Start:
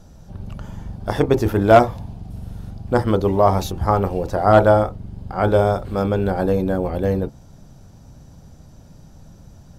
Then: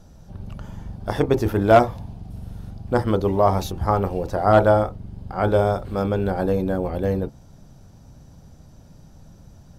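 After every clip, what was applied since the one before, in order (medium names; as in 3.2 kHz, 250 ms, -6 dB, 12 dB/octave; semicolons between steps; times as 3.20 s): peaking EQ 7.2 kHz -2 dB 0.21 oct; trim -2.5 dB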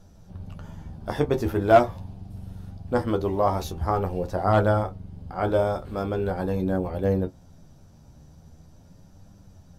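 flange 0.43 Hz, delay 9.9 ms, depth 3.8 ms, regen +40%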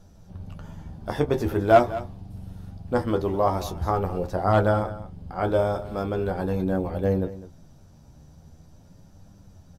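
delay 205 ms -15.5 dB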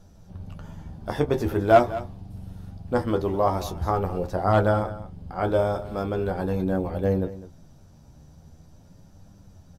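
no audible change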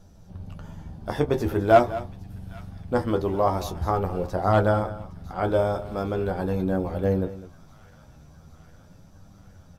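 feedback echo behind a high-pass 812 ms, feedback 70%, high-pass 1.5 kHz, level -20 dB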